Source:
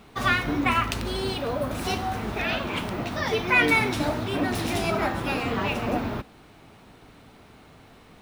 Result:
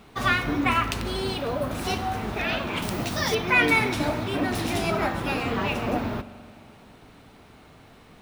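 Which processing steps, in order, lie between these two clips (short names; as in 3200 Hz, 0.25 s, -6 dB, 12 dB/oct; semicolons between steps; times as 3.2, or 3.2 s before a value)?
2.82–3.35 tone controls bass +2 dB, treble +12 dB; spring tank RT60 2.3 s, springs 42 ms, chirp 65 ms, DRR 15.5 dB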